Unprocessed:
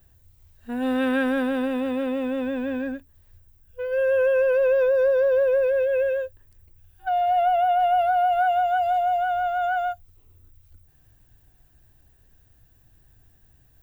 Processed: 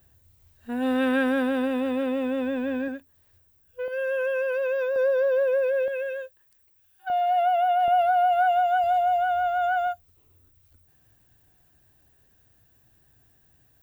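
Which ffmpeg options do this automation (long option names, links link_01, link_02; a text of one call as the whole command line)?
ffmpeg -i in.wav -af "asetnsamples=nb_out_samples=441:pad=0,asendcmd='2.88 highpass f 260;3.88 highpass f 1000;4.96 highpass f 480;5.88 highpass f 1200;7.1 highpass f 480;7.88 highpass f 150;8.84 highpass f 53;9.87 highpass f 160',highpass=frequency=86:poles=1" out.wav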